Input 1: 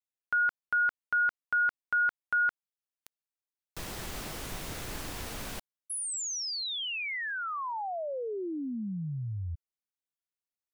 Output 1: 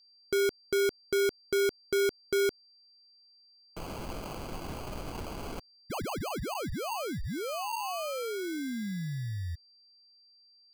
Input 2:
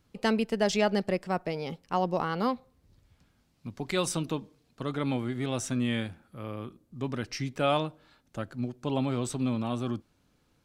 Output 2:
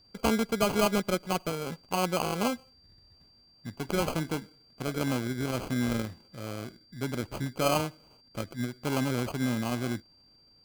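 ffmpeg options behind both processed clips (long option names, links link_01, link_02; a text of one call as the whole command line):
ffmpeg -i in.wav -af "acrusher=samples=24:mix=1:aa=0.000001,aeval=exprs='val(0)+0.00112*sin(2*PI*4700*n/s)':channel_layout=same" out.wav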